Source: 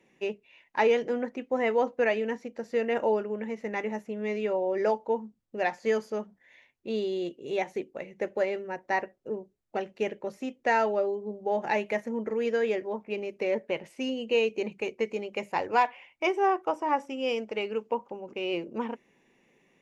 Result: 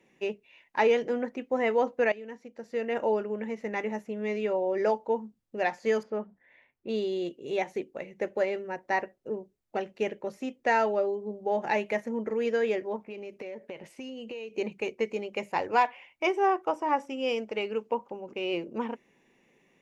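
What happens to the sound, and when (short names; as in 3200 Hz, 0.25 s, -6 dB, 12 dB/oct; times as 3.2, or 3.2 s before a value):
2.12–3.25 fade in, from -15.5 dB
6.03–6.89 LPF 2100 Hz
12.96–14.57 compressor 8:1, threshold -36 dBFS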